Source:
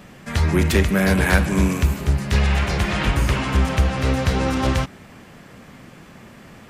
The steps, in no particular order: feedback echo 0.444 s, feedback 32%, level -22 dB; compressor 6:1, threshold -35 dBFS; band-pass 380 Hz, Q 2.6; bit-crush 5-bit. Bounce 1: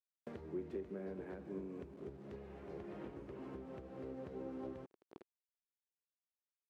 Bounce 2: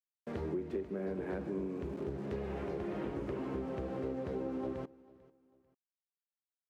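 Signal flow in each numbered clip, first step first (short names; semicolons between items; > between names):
feedback echo > bit-crush > compressor > band-pass; bit-crush > band-pass > compressor > feedback echo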